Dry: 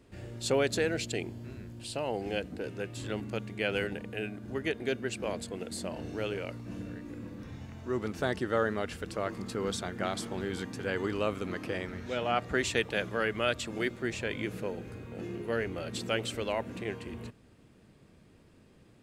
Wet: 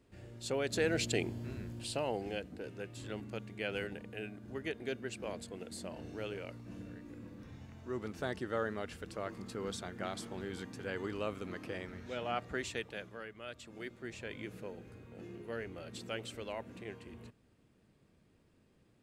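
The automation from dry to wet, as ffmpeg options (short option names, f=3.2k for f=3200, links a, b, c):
-af "volume=10.5dB,afade=t=in:st=0.62:d=0.42:silence=0.354813,afade=t=out:st=1.71:d=0.68:silence=0.398107,afade=t=out:st=12.32:d=1.03:silence=0.251189,afade=t=in:st=13.35:d=0.98:silence=0.334965"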